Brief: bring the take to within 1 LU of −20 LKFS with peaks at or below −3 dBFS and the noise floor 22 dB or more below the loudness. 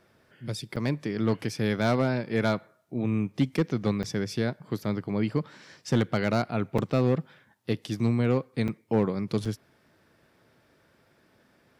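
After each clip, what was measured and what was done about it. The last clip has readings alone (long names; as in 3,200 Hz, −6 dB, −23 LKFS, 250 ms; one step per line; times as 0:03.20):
share of clipped samples 0.5%; peaks flattened at −15.5 dBFS; number of dropouts 5; longest dropout 5.1 ms; integrated loudness −28.5 LKFS; sample peak −15.5 dBFS; target loudness −20.0 LKFS
→ clipped peaks rebuilt −15.5 dBFS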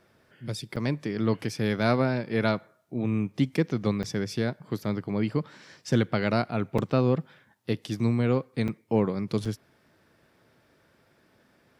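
share of clipped samples 0.0%; number of dropouts 5; longest dropout 5.1 ms
→ repair the gap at 0:00.76/0:04.03/0:06.78/0:08.68/0:09.45, 5.1 ms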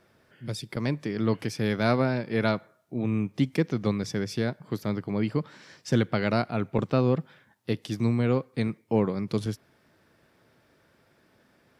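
number of dropouts 0; integrated loudness −28.0 LKFS; sample peak −9.5 dBFS; target loudness −20.0 LKFS
→ level +8 dB
brickwall limiter −3 dBFS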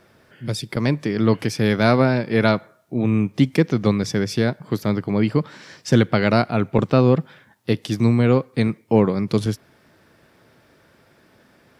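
integrated loudness −20.0 LKFS; sample peak −3.0 dBFS; background noise floor −57 dBFS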